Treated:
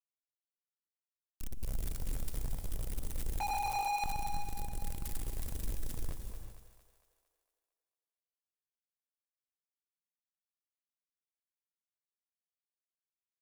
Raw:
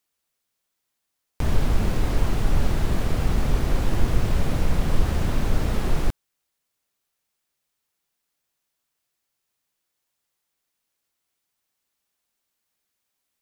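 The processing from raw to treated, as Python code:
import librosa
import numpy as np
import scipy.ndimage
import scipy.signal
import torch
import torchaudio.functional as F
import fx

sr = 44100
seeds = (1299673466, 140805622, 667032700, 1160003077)

y = scipy.signal.sosfilt(scipy.signal.cheby2(4, 70, [150.0, 2200.0], 'bandstop', fs=sr, output='sos'), x)
y = fx.quant_dither(y, sr, seeds[0], bits=6, dither='none')
y = fx.ring_mod(y, sr, carrier_hz=820.0, at=(3.4, 4.04))
y = 10.0 ** (-36.0 / 20.0) * np.tanh(y / 10.0 ** (-36.0 / 20.0))
y = fx.echo_split(y, sr, split_hz=460.0, low_ms=104, high_ms=228, feedback_pct=52, wet_db=-9.0)
y = fx.rev_gated(y, sr, seeds[1], gate_ms=410, shape='rising', drr_db=7.0)
y = y * librosa.db_to_amplitude(2.5)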